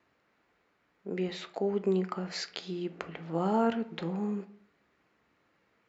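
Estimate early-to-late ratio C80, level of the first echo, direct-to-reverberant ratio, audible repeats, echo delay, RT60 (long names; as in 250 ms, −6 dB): 19.5 dB, no echo audible, 9.0 dB, no echo audible, no echo audible, 0.50 s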